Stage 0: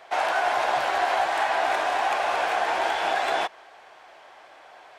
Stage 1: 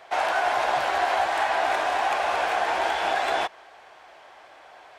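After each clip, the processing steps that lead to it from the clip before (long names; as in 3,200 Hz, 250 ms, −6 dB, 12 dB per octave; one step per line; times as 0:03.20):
parametric band 67 Hz +5.5 dB 1.8 octaves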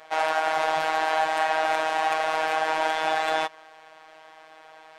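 phases set to zero 158 Hz
level +2 dB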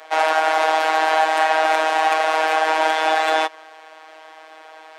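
Butterworth high-pass 260 Hz 96 dB per octave
level +6.5 dB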